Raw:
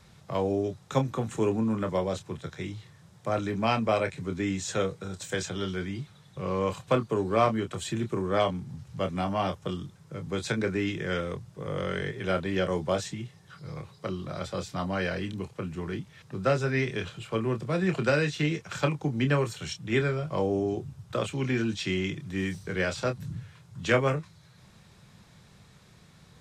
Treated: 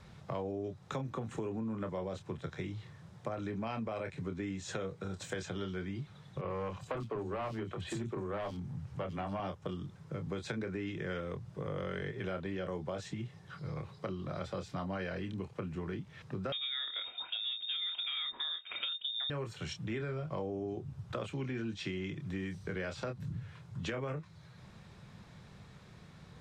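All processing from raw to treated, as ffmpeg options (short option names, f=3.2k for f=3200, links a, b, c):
-filter_complex "[0:a]asettb=1/sr,asplit=3[a][b][c];[a]atrim=end=6.414[d];[b]atrim=start=6.41:end=9.4,asetpts=PTS-STARTPTS,afade=t=in:d=0.004:c=qsin,afade=t=out:st=2.986:d=0.004:c=qsin,asoftclip=type=hard:threshold=-23.5dB,acrossover=split=240|3900[e][f][g];[e]adelay=30[h];[g]adelay=90[i];[h][f][i]amix=inputs=3:normalize=0,atrim=end_sample=131859[j];[c]atrim=start=9.396[k];[d][j]acrossfade=d=0.004:c1=hsin:c2=qsin[l];[l][k]acrossfade=d=0.004:c1=qsin:c2=hsin,asettb=1/sr,asplit=3[m][n][o];[m]atrim=end=16.524[p];[n]atrim=start=16.52:end=19.3,asetpts=PTS-STARTPTS,afade=t=in:d=0.004:c=qsin,afade=t=out:st=2.776:d=0.004:c=qsin,tiltshelf=f=720:g=4.5,lowpass=f=3.2k:t=q:w=0.5098,lowpass=f=3.2k:t=q:w=0.6013,lowpass=f=3.2k:t=q:w=0.9,lowpass=f=3.2k:t=q:w=2.563,afreqshift=-3800[q];[o]atrim=start=19.296[r];[p][q]acrossfade=d=0.004:c1=hsin:c2=qsin[s];[s][r]acrossfade=d=0.004:c1=qsin:c2=hsin,lowpass=f=2.8k:p=1,alimiter=limit=-20.5dB:level=0:latency=1:release=48,acompressor=threshold=-38dB:ratio=4,volume=1.5dB"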